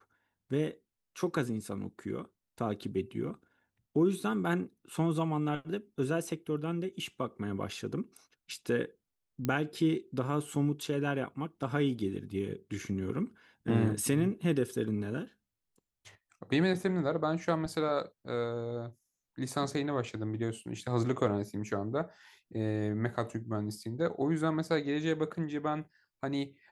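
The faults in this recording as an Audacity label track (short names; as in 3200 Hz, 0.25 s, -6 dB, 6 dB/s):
9.450000	9.450000	pop -18 dBFS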